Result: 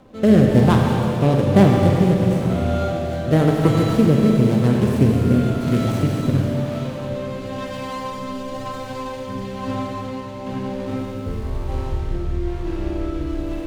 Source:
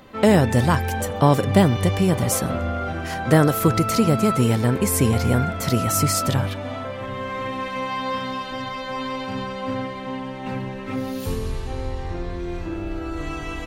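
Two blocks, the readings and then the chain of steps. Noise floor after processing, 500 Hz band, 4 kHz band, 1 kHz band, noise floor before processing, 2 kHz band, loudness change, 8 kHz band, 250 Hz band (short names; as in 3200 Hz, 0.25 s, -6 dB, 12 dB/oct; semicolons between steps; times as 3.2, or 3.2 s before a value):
-30 dBFS, +2.5 dB, -3.0 dB, -2.5 dB, -32 dBFS, -3.5 dB, +2.5 dB, -12.5 dB, +4.5 dB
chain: median filter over 25 samples; rotary speaker horn 1 Hz; Schroeder reverb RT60 3.5 s, combs from 29 ms, DRR 0 dB; gain +2.5 dB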